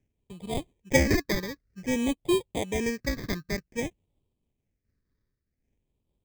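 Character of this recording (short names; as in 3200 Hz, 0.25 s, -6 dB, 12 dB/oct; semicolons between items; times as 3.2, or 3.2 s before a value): aliases and images of a low sample rate 1400 Hz, jitter 0%; phasing stages 6, 0.53 Hz, lowest notch 760–1600 Hz; noise-modulated level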